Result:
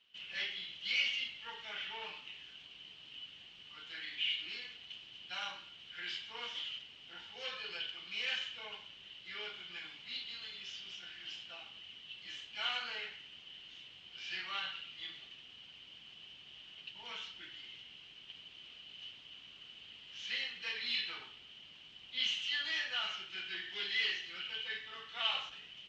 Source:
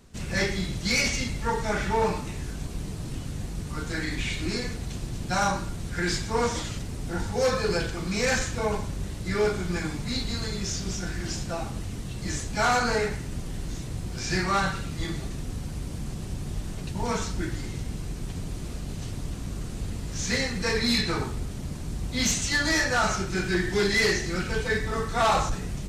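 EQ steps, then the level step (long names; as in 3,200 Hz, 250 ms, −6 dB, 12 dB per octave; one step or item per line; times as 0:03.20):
resonant band-pass 3,000 Hz, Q 15
high-frequency loss of the air 150 metres
+12.0 dB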